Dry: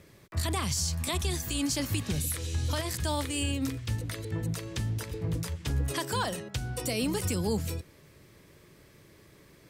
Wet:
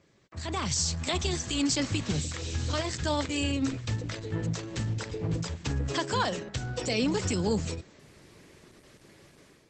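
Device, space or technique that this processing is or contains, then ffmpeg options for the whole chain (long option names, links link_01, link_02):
video call: -af "highpass=frequency=120:poles=1,dynaudnorm=framelen=350:gausssize=3:maxgain=11dB,volume=-7dB" -ar 48000 -c:a libopus -b:a 12k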